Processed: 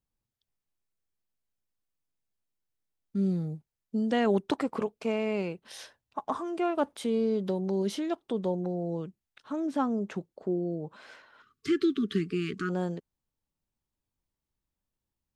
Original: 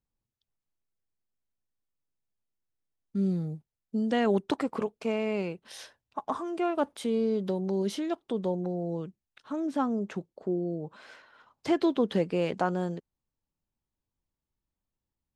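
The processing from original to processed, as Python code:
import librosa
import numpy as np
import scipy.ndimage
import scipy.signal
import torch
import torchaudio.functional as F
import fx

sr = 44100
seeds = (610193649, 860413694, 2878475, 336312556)

y = fx.spec_erase(x, sr, start_s=11.42, length_s=1.27, low_hz=450.0, high_hz=1100.0)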